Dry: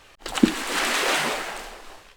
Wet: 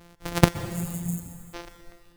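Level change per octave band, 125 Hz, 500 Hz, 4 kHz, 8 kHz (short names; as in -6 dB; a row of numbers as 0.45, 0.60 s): +12.5, -2.5, -11.0, -7.0 dB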